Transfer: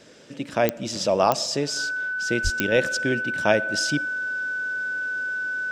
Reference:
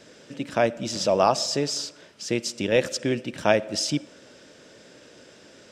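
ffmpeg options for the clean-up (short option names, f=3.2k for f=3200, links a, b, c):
-filter_complex "[0:a]adeclick=t=4,bandreject=f=1.5k:w=30,asplit=3[a][b][c];[a]afade=t=out:st=2.43:d=0.02[d];[b]highpass=f=140:w=0.5412,highpass=f=140:w=1.3066,afade=t=in:st=2.43:d=0.02,afade=t=out:st=2.55:d=0.02[e];[c]afade=t=in:st=2.55:d=0.02[f];[d][e][f]amix=inputs=3:normalize=0"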